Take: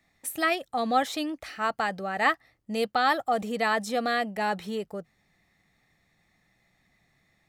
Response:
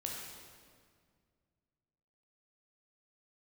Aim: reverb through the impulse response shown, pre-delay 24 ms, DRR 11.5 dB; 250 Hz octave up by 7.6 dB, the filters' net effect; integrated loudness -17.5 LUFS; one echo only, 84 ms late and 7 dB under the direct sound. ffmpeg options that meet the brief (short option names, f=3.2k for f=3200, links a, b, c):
-filter_complex "[0:a]equalizer=f=250:t=o:g=9,aecho=1:1:84:0.447,asplit=2[a][b];[1:a]atrim=start_sample=2205,adelay=24[c];[b][c]afir=irnorm=-1:irlink=0,volume=-12dB[d];[a][d]amix=inputs=2:normalize=0,volume=7.5dB"